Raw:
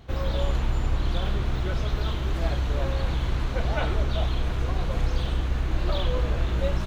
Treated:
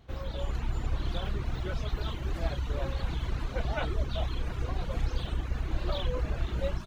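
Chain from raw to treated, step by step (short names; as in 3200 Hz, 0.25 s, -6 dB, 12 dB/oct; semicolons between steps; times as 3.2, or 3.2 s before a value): reverb removal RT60 0.92 s; AGC gain up to 5 dB; gain -8.5 dB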